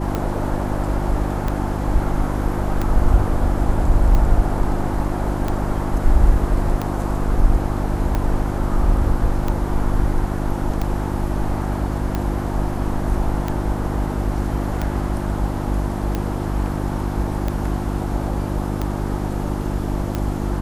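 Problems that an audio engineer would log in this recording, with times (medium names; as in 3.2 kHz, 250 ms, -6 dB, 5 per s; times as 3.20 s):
hum 50 Hz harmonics 7 -24 dBFS
tick 45 rpm -10 dBFS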